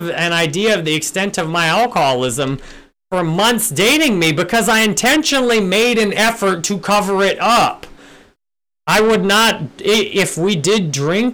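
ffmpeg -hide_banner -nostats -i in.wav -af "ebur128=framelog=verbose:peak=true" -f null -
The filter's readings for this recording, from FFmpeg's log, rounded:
Integrated loudness:
  I:         -14.3 LUFS
  Threshold: -24.7 LUFS
Loudness range:
  LRA:         3.1 LU
  Threshold: -34.7 LUFS
  LRA low:   -16.2 LUFS
  LRA high:  -13.1 LUFS
True peak:
  Peak:       -3.2 dBFS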